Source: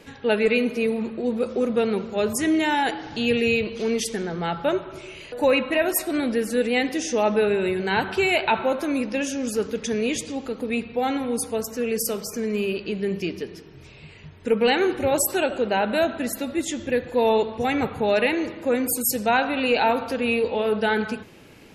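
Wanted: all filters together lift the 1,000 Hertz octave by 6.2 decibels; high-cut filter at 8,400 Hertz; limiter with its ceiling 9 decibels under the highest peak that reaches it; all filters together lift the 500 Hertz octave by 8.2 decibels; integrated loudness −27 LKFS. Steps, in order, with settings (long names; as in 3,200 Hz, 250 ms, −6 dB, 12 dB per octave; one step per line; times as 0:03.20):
low-pass filter 8,400 Hz
parametric band 500 Hz +8.5 dB
parametric band 1,000 Hz +4.5 dB
level −6.5 dB
brickwall limiter −17.5 dBFS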